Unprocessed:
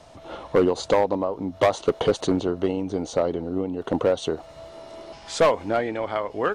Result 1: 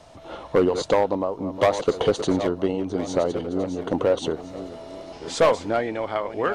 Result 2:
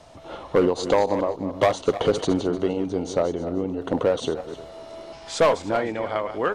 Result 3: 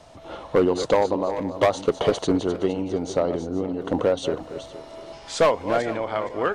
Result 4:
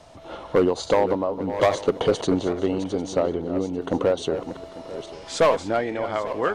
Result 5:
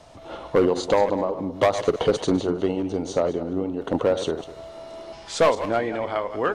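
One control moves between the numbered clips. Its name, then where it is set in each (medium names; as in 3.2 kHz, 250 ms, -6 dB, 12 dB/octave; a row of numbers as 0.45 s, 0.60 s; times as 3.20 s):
backward echo that repeats, time: 683 ms, 152 ms, 233 ms, 422 ms, 101 ms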